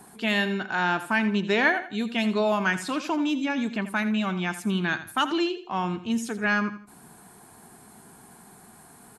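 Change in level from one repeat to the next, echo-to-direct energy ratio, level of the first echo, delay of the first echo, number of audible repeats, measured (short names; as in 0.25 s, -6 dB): -10.0 dB, -12.5 dB, -13.0 dB, 83 ms, 3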